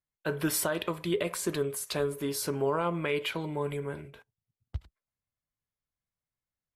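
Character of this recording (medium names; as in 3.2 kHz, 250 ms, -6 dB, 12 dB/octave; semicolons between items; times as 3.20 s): noise floor -94 dBFS; spectral tilt -4.5 dB/octave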